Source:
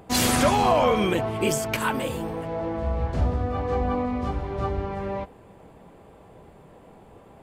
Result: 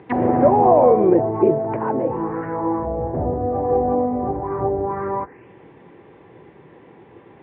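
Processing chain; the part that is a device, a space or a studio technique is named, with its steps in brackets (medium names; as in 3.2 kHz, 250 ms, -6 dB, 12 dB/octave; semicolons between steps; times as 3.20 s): envelope filter bass rig (touch-sensitive low-pass 670–4200 Hz down, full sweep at -23 dBFS; cabinet simulation 79–2300 Hz, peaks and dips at 81 Hz -10 dB, 200 Hz -5 dB, 350 Hz +7 dB, 650 Hz -10 dB, 1.3 kHz -5 dB, 1.9 kHz +5 dB); trim +4 dB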